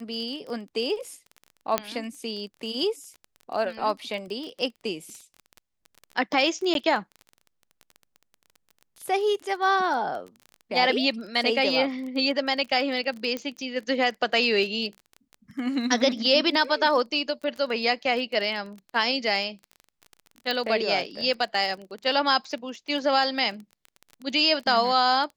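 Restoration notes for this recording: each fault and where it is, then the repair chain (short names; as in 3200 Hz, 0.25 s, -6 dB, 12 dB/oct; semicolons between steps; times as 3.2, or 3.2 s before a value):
crackle 21/s -33 dBFS
1.78 pop -7 dBFS
6.74–6.75 gap 12 ms
13.37 pop -17 dBFS
20.51 pop -15 dBFS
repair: de-click; interpolate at 6.74, 12 ms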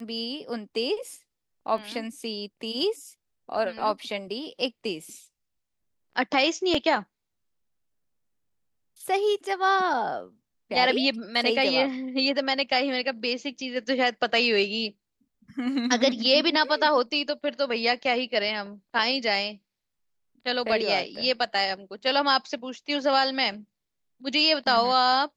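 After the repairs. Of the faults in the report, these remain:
1.78 pop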